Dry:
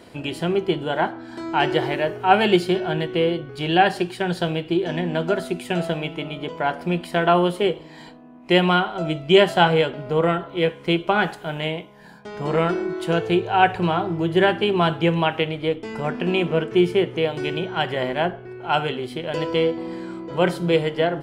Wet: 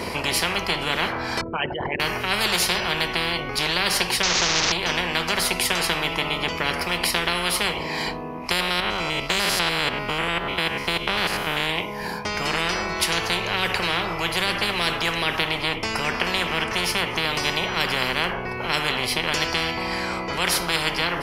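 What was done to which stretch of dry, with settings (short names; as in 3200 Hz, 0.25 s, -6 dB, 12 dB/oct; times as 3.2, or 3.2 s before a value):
1.41–2 formant sharpening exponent 3
4.23–4.72 delta modulation 32 kbps, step -21 dBFS
8.51–11.7 stepped spectrum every 0.1 s
whole clip: ripple EQ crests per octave 0.84, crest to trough 9 dB; spectral compressor 10:1; gain -1 dB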